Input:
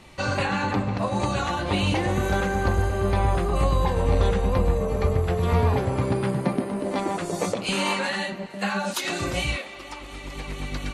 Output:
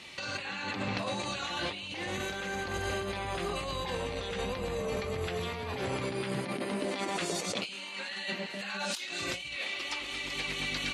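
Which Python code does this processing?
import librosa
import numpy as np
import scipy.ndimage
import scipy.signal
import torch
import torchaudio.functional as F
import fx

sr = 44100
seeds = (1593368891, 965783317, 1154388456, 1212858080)

y = fx.weighting(x, sr, curve='D')
y = fx.over_compress(y, sr, threshold_db=-28.0, ratio=-1.0)
y = F.gain(torch.from_numpy(y), -7.5).numpy()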